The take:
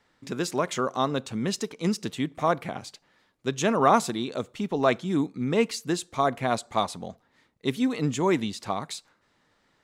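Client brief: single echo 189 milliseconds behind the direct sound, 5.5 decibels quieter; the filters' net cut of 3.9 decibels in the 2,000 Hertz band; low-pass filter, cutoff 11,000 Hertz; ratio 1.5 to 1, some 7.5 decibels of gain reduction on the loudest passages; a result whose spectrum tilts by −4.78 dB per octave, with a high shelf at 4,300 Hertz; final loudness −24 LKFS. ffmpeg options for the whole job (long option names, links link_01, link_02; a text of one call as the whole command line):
ffmpeg -i in.wav -af "lowpass=11000,equalizer=frequency=2000:width_type=o:gain=-6,highshelf=frequency=4300:gain=3.5,acompressor=threshold=-37dB:ratio=1.5,aecho=1:1:189:0.531,volume=8.5dB" out.wav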